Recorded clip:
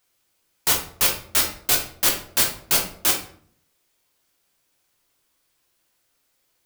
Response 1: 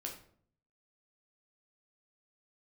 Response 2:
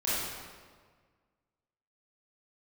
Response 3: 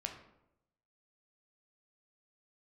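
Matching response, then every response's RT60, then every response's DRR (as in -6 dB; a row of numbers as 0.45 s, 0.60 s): 1; 0.55 s, 1.6 s, 0.85 s; 0.0 dB, -10.5 dB, 3.0 dB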